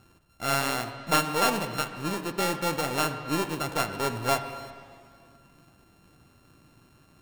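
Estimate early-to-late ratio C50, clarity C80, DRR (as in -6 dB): 9.0 dB, 10.0 dB, 7.5 dB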